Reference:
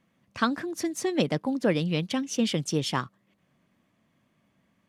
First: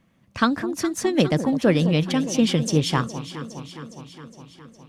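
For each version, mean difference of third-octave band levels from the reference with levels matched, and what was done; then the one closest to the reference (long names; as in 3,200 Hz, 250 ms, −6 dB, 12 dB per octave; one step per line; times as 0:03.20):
4.0 dB: low-shelf EQ 100 Hz +11.5 dB
on a send: delay that swaps between a low-pass and a high-pass 206 ms, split 970 Hz, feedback 79%, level −11 dB
on the sum: level +4.5 dB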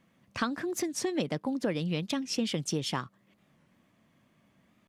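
2.5 dB: downward compressor 3 to 1, threshold −32 dBFS, peak gain reduction 10 dB
wow of a warped record 45 rpm, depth 160 cents
level +2.5 dB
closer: second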